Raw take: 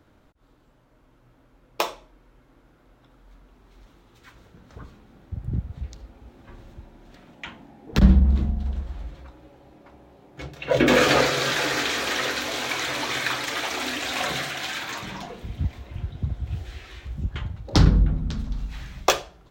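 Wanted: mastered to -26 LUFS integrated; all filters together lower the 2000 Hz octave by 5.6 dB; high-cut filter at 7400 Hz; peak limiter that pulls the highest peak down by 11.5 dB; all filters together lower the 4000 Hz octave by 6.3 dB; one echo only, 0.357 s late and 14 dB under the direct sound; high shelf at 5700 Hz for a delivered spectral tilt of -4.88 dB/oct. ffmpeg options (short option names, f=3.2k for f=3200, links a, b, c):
-af "lowpass=7.4k,equalizer=f=2k:t=o:g=-6,equalizer=f=4k:t=o:g=-9,highshelf=f=5.7k:g=8.5,alimiter=limit=-13.5dB:level=0:latency=1,aecho=1:1:357:0.2,volume=2.5dB"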